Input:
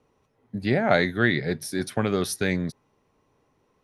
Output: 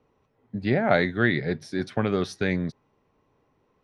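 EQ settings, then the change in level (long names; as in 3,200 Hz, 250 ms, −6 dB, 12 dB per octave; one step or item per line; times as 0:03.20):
high-frequency loss of the air 130 metres
0.0 dB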